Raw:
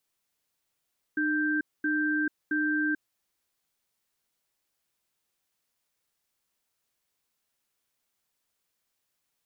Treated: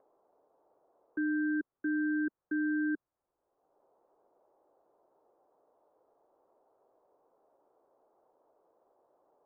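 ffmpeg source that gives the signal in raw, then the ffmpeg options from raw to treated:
-f lavfi -i "aevalsrc='0.0447*(sin(2*PI*303*t)+sin(2*PI*1570*t))*clip(min(mod(t,0.67),0.44-mod(t,0.67))/0.005,0,1)':d=1.78:s=44100"
-filter_complex "[0:a]lowpass=f=1.2k:w=0.5412,lowpass=f=1.2k:w=1.3066,equalizer=f=220:w=3:g=-5.5,acrossover=split=380|760[a][b][c];[b]acompressor=mode=upward:threshold=-47dB:ratio=2.5[d];[a][d][c]amix=inputs=3:normalize=0"

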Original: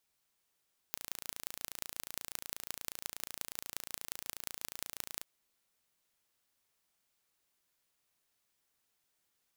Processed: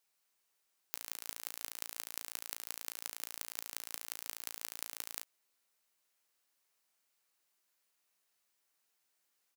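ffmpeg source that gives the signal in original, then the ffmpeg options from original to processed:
-f lavfi -i "aevalsrc='0.355*eq(mod(n,1558),0)*(0.5+0.5*eq(mod(n,7790),0))':d=4.29:s=44100"
-filter_complex "[0:a]highpass=f=410:p=1,equalizer=f=3.4k:w=7.3:g=-3.5,asplit=2[a][b];[b]adelay=17,volume=-12dB[c];[a][c]amix=inputs=2:normalize=0"

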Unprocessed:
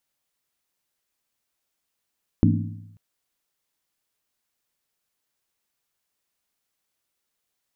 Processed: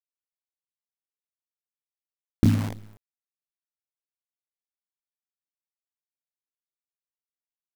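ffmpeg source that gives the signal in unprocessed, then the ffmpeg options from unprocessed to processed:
-f lavfi -i "aevalsrc='0.15*pow(10,-3*t/0.97)*sin(2*PI*104*t)+0.133*pow(10,-3*t/0.768)*sin(2*PI*165.8*t)+0.119*pow(10,-3*t/0.664)*sin(2*PI*222.1*t)+0.106*pow(10,-3*t/0.64)*sin(2*PI*238.8*t)+0.0944*pow(10,-3*t/0.596)*sin(2*PI*275.9*t)+0.0841*pow(10,-3*t/0.568)*sin(2*PI*303.5*t)':d=0.54:s=44100"
-af "aecho=1:1:28|62:0.501|0.126,acrusher=bits=6:dc=4:mix=0:aa=0.000001"

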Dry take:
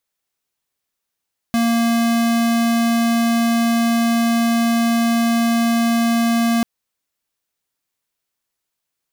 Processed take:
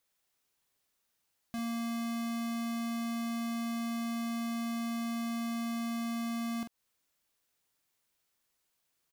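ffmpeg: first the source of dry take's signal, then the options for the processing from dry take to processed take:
-f lavfi -i "aevalsrc='0.15*(2*lt(mod(232*t,1),0.5)-1)':d=5.09:s=44100"
-filter_complex "[0:a]alimiter=level_in=3.5dB:limit=-24dB:level=0:latency=1:release=196,volume=-3.5dB,asoftclip=type=hard:threshold=-36dB,asplit=2[a][b];[b]adelay=44,volume=-8dB[c];[a][c]amix=inputs=2:normalize=0"

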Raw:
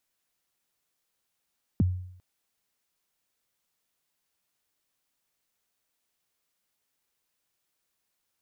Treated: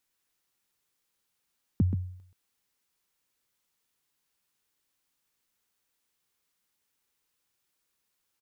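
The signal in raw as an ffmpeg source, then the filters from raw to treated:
-f lavfi -i "aevalsrc='0.141*pow(10,-3*t/0.68)*sin(2*PI*(290*0.022/log(91/290)*(exp(log(91/290)*min(t,0.022)/0.022)-1)+91*max(t-0.022,0)))':d=0.4:s=44100"
-filter_complex "[0:a]equalizer=f=650:w=7.1:g=-10,asplit=2[a][b];[b]aecho=0:1:129:0.398[c];[a][c]amix=inputs=2:normalize=0"

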